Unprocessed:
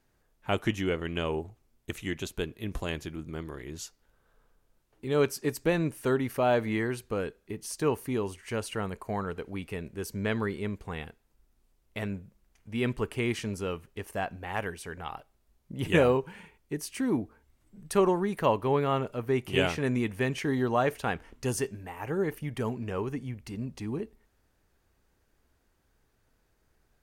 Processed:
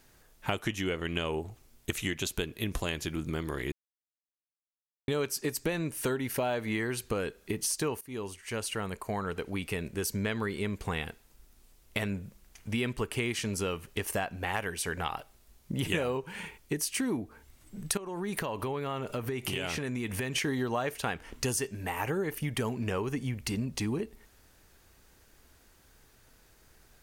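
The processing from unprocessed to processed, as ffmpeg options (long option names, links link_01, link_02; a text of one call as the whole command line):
ffmpeg -i in.wav -filter_complex "[0:a]asettb=1/sr,asplit=3[link_01][link_02][link_03];[link_01]atrim=end=6.094[link_04];[link_02]atrim=start=6.09:end=6.49,asetpts=PTS-STARTPTS,afade=type=in:duration=0.004:curve=qsin,afade=type=out:start_time=0.396:duration=0.004:curve=qsin,asuperstop=centerf=1200:order=4:qfactor=7.7[link_05];[link_03]atrim=start=6.486[link_06];[link_04][link_05]acrossfade=duration=0.004:curve1=hsin:curve2=qsin[link_07];[link_07][link_06]acrossfade=duration=0.004:curve1=qsin:curve2=hsin,asettb=1/sr,asplit=3[link_08][link_09][link_10];[link_08]atrim=end=17.974[link_11];[link_09]atrim=start=17.97:end=20.36,asetpts=PTS-STARTPTS,afade=type=in:duration=0.004:curve=qsin,afade=type=out:start_time=2.386:duration=0.004:curve=qsin,acompressor=threshold=-37dB:ratio=8:attack=3.2:release=140:knee=1:detection=peak[link_12];[link_10]atrim=start=20.356[link_13];[link_11][link_12]acrossfade=duration=0.004:curve1=hsin:curve2=qsin[link_14];[link_14][link_13]acrossfade=duration=0.004:curve1=qsin:curve2=hsin,asplit=4[link_15][link_16][link_17][link_18];[link_15]atrim=end=3.72,asetpts=PTS-STARTPTS,afade=type=out:start_time=3.716:duration=0.004:curve=hsin[link_19];[link_16]atrim=start=3.72:end=5.08,asetpts=PTS-STARTPTS,volume=0[link_20];[link_17]atrim=start=5.08:end=8.01,asetpts=PTS-STARTPTS,afade=type=in:duration=0.004:curve=hsin,afade=type=out:start_time=2.926:duration=0.004:curve=hsin:silence=0.141254[link_21];[link_18]atrim=start=8.01,asetpts=PTS-STARTPTS,afade=type=in:duration=3:silence=0.141254[link_22];[link_19][link_20][link_21][link_22]concat=n=4:v=0:a=1,highshelf=frequency=2100:gain=8,acompressor=threshold=-37dB:ratio=6,volume=8dB" out.wav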